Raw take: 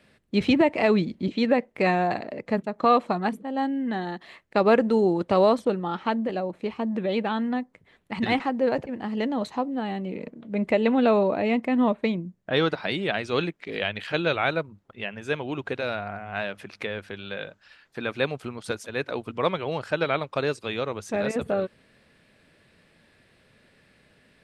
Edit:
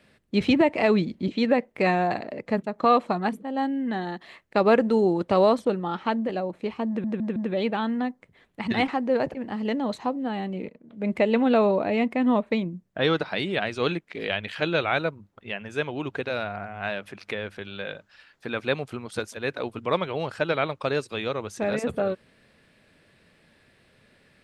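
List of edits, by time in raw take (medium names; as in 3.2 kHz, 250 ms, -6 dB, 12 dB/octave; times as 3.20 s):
6.88 s: stutter 0.16 s, 4 plays
10.21–10.62 s: fade in, from -19.5 dB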